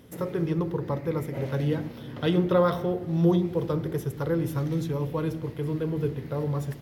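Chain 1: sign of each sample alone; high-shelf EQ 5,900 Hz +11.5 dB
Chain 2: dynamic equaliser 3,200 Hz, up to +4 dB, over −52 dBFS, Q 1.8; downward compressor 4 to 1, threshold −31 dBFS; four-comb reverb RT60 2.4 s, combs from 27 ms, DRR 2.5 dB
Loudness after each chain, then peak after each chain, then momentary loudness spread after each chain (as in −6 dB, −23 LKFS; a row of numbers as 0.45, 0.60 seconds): −25.0, −33.5 LKFS; −15.0, −20.0 dBFS; 2, 3 LU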